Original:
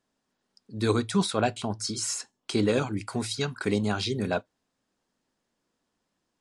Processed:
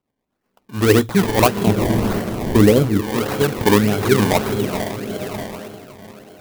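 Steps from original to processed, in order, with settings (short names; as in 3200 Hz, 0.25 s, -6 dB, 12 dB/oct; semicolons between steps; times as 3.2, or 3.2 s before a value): dynamic EQ 490 Hz, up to +4 dB, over -38 dBFS, Q 1; on a send: diffused feedback echo 0.455 s, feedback 46%, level -7.5 dB; on the sum: rotary speaker horn 8 Hz, later 1 Hz, at 0.4; decimation with a swept rate 23×, swing 100% 1.7 Hz; 1.67–3.01 low shelf 370 Hz +10.5 dB; in parallel at -6 dB: hard clip -15.5 dBFS, distortion -13 dB; on the sum: AGC gain up to 13 dB; clock jitter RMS 0.029 ms; gain -1 dB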